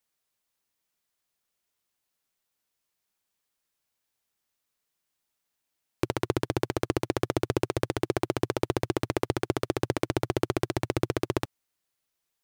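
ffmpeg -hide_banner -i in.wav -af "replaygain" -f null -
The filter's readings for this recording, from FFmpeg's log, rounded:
track_gain = +12.6 dB
track_peak = 0.279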